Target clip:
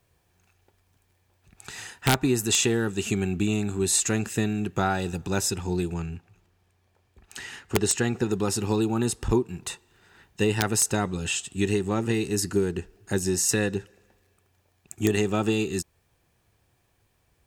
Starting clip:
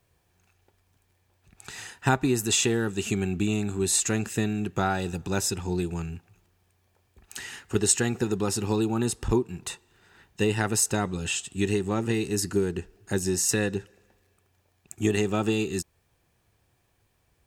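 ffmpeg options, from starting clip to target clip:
ffmpeg -i in.wav -filter_complex "[0:a]asettb=1/sr,asplit=3[link_01][link_02][link_03];[link_01]atrim=end=5.934[link_04];[link_02]atrim=start=5.93:end=8.29,asetpts=PTS-STARTPTS,afade=type=in:duration=0.004:curve=qsin,afade=type=out:start_time=2.356:duration=0.004:curve=qsin,highshelf=frequency=8000:gain=-9[link_05];[link_03]atrim=start=8.286[link_06];[link_04][link_05]acrossfade=duration=0.004:curve1=hsin:curve2=qsin[link_07];[link_07][link_06]acrossfade=duration=0.004:curve1=qsin:curve2=hsin,aeval=exprs='(mod(3.55*val(0)+1,2)-1)/3.55':channel_layout=same,volume=1dB" out.wav

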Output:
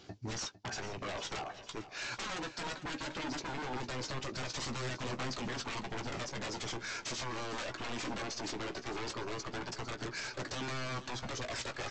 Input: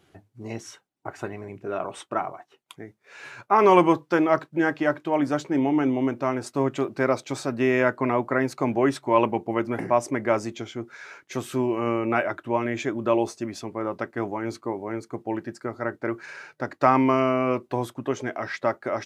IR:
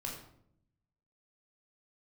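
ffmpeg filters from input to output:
-filter_complex "[0:a]equalizer=frequency=4900:width_type=o:width=1.1:gain=13.5,bandreject=frequency=1900:width=22,acompressor=threshold=-29dB:ratio=6,aresample=16000,aeval=exprs='0.0168*(abs(mod(val(0)/0.0168+3,4)-2)-1)':channel_layout=same,aresample=44100,aphaser=in_gain=1:out_gain=1:delay=4.3:decay=0.26:speed=0.12:type=triangular,atempo=1.6,asplit=2[link_01][link_02];[link_02]adelay=16,volume=-9dB[link_03];[link_01][link_03]amix=inputs=2:normalize=0,asplit=2[link_04][link_05];[link_05]aecho=0:1:453|906|1359|1812|2265:0.2|0.104|0.054|0.0281|0.0146[link_06];[link_04][link_06]amix=inputs=2:normalize=0,volume=1dB"

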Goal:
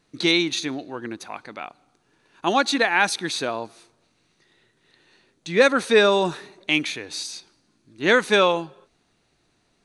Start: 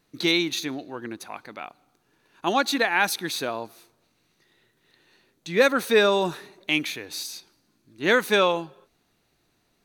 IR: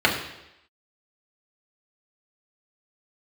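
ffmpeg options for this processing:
-af "aresample=22050,aresample=44100,volume=2.5dB"

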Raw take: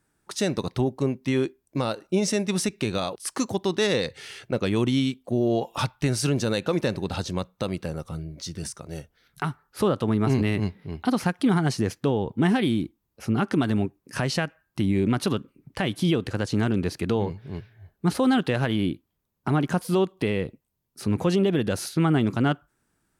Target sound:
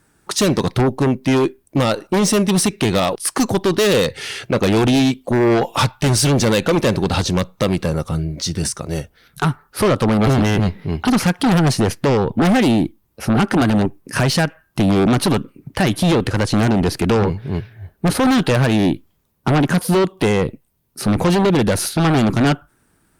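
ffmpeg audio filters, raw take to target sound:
ffmpeg -i in.wav -af "aeval=exprs='0.224*(cos(1*acos(clip(val(0)/0.224,-1,1)))-cos(1*PI/2))+0.0891*(cos(5*acos(clip(val(0)/0.224,-1,1)))-cos(5*PI/2))+0.00562*(cos(6*acos(clip(val(0)/0.224,-1,1)))-cos(6*PI/2))+0.0141*(cos(7*acos(clip(val(0)/0.224,-1,1)))-cos(7*PI/2))+0.00316*(cos(8*acos(clip(val(0)/0.224,-1,1)))-cos(8*PI/2))':channel_layout=same,volume=5dB" -ar 48000 -c:a libopus -b:a 48k out.opus

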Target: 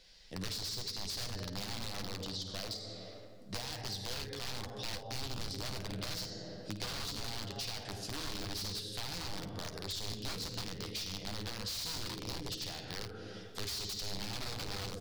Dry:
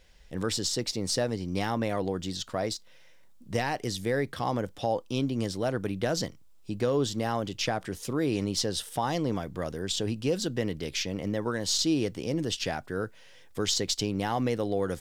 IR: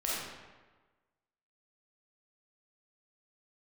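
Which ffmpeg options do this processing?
-filter_complex "[0:a]asplit=2[link_01][link_02];[link_02]highpass=frequency=48:width=0.5412,highpass=frequency=48:width=1.3066[link_03];[1:a]atrim=start_sample=2205,asetrate=29547,aresample=44100[link_04];[link_03][link_04]afir=irnorm=-1:irlink=0,volume=-11.5dB[link_05];[link_01][link_05]amix=inputs=2:normalize=0,aeval=exprs='(mod(10.6*val(0)+1,2)-1)/10.6':channel_layout=same,equalizer=frequency=4500:width_type=o:width=0.87:gain=14,acrossover=split=130[link_06][link_07];[link_07]acompressor=threshold=-36dB:ratio=3[link_08];[link_06][link_08]amix=inputs=2:normalize=0,aecho=1:1:10|53:0.376|0.224,volume=-7dB"

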